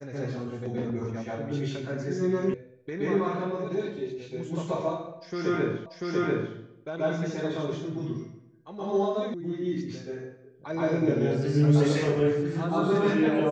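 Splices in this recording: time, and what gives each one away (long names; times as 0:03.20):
0:02.54: cut off before it has died away
0:05.86: the same again, the last 0.69 s
0:09.34: cut off before it has died away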